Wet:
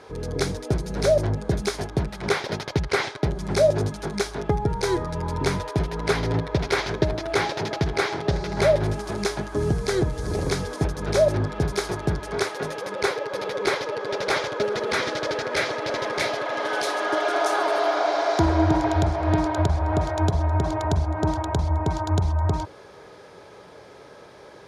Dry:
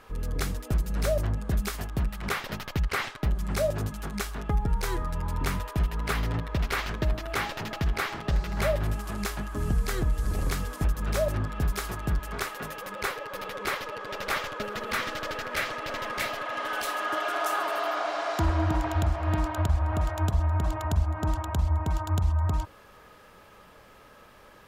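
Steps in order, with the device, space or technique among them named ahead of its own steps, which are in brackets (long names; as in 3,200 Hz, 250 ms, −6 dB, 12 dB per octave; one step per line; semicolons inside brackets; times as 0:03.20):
car door speaker (loudspeaker in its box 110–8,900 Hz, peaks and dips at 220 Hz −8 dB, 400 Hz +6 dB, 1,200 Hz −9 dB, 1,800 Hz −5 dB, 2,800 Hz −10 dB, 7,700 Hz −9 dB)
level +9 dB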